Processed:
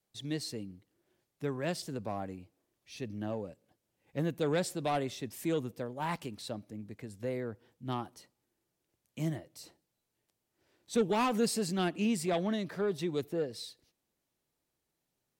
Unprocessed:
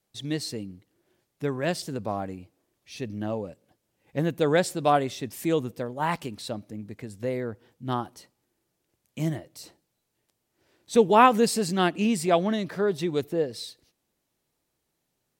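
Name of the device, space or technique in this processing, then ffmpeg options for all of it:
one-band saturation: -filter_complex "[0:a]acrossover=split=340|2700[s0][s1][s2];[s1]asoftclip=type=tanh:threshold=0.075[s3];[s0][s3][s2]amix=inputs=3:normalize=0,volume=0.501"

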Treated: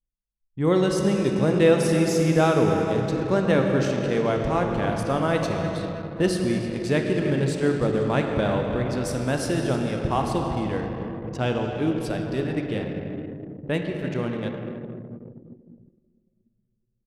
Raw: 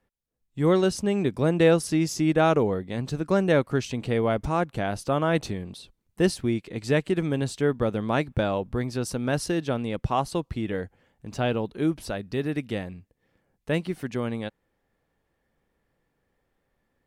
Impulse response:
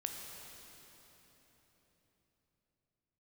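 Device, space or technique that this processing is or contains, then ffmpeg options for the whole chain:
cave: -filter_complex "[0:a]aecho=1:1:307:0.158[s0];[1:a]atrim=start_sample=2205[s1];[s0][s1]afir=irnorm=-1:irlink=0,anlmdn=0.631,volume=1.26"

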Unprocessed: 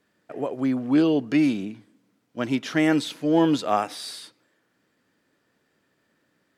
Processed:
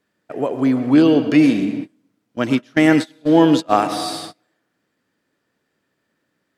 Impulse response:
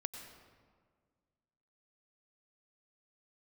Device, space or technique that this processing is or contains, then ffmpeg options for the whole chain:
keyed gated reverb: -filter_complex "[0:a]asplit=3[s0][s1][s2];[1:a]atrim=start_sample=2205[s3];[s1][s3]afir=irnorm=-1:irlink=0[s4];[s2]apad=whole_len=290011[s5];[s4][s5]sidechaingate=range=0.0224:threshold=0.00501:ratio=16:detection=peak,volume=2.51[s6];[s0][s6]amix=inputs=2:normalize=0,asplit=3[s7][s8][s9];[s7]afade=t=out:st=2.57:d=0.02[s10];[s8]agate=range=0.0501:threshold=0.224:ratio=16:detection=peak,afade=t=in:st=2.57:d=0.02,afade=t=out:st=3.75:d=0.02[s11];[s9]afade=t=in:st=3.75:d=0.02[s12];[s10][s11][s12]amix=inputs=3:normalize=0,volume=0.75"

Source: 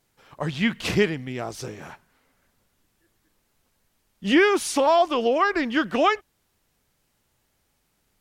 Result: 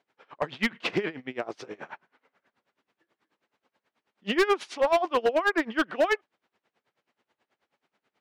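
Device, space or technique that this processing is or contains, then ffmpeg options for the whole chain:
helicopter radio: -af "highpass=320,lowpass=2800,aeval=exprs='val(0)*pow(10,-22*(0.5-0.5*cos(2*PI*9.3*n/s))/20)':c=same,asoftclip=type=hard:threshold=0.0794,volume=1.78"

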